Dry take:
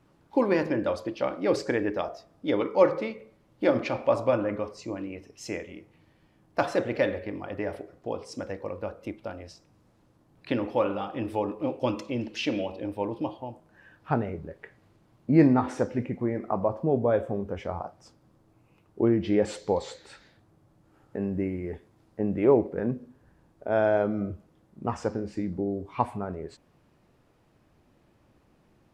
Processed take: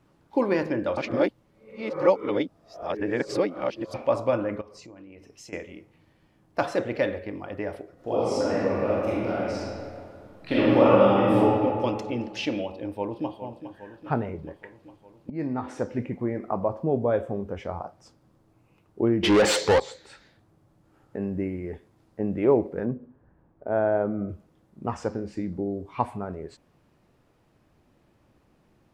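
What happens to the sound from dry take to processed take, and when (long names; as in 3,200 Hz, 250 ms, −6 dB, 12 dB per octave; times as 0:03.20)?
0:00.97–0:03.94: reverse
0:04.61–0:05.53: downward compressor, threshold −43 dBFS
0:07.94–0:11.39: thrown reverb, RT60 2.3 s, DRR −10 dB
0:12.69–0:13.42: delay throw 410 ms, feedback 70%, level −11 dB
0:15.30–0:16.00: fade in, from −20 dB
0:19.23–0:19.80: mid-hump overdrive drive 28 dB, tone 5,700 Hz, clips at −11 dBFS
0:22.85–0:24.29: low-pass filter 1,500 Hz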